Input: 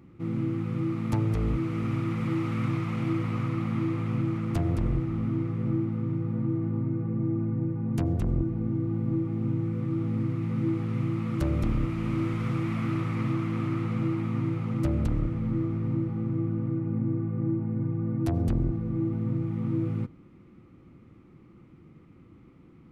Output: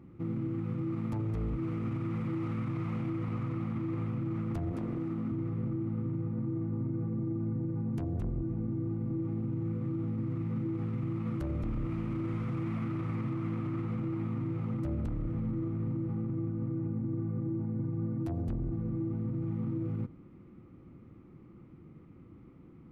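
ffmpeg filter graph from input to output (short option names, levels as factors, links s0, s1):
-filter_complex "[0:a]asettb=1/sr,asplit=3[s0][s1][s2];[s0]atrim=end=4.724[s3];[s1]atrim=start=4.72:end=5.32,asetpts=PTS-STARTPTS,afade=t=in:d=0.004:c=qsin,afade=t=out:st=0.596:d=0.004:c=qsin,highpass=180,aeval=exprs='sgn(val(0))*max(abs(val(0))-0.00133,0)':c=same,asplit=2[s4][s5];[s5]adelay=19,volume=0.251[s6];[s4][s6]amix=inputs=2:normalize=0,atrim=end_sample=26460[s7];[s2]atrim=start=5.316[s8];[s3][s7]acrossfade=d=0.004:c1=hsin:c2=qsin[s9];[s9][s8]acrossfade=d=0.004:c1=qsin:c2=hsin,highshelf=f=2100:g=-10,alimiter=level_in=1.41:limit=0.0631:level=0:latency=1:release=45,volume=0.708"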